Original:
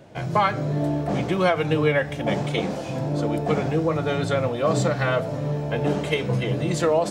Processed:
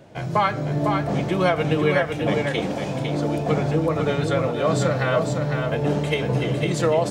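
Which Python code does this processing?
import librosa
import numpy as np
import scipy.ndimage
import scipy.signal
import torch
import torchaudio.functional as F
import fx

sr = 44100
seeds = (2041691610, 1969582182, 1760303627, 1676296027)

y = x + 10.0 ** (-5.0 / 20.0) * np.pad(x, (int(503 * sr / 1000.0), 0))[:len(x)]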